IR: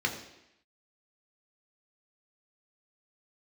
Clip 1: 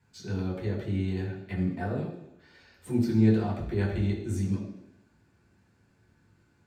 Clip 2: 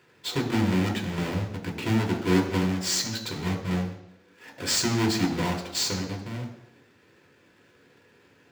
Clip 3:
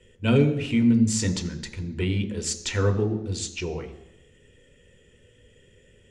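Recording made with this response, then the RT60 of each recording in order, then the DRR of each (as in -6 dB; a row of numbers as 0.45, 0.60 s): 2; 0.85, 0.85, 0.85 s; -6.0, 1.0, 6.0 dB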